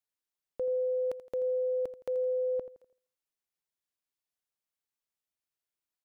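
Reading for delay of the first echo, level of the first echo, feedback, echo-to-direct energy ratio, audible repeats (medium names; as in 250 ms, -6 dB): 83 ms, -14.0 dB, 40%, -13.0 dB, 3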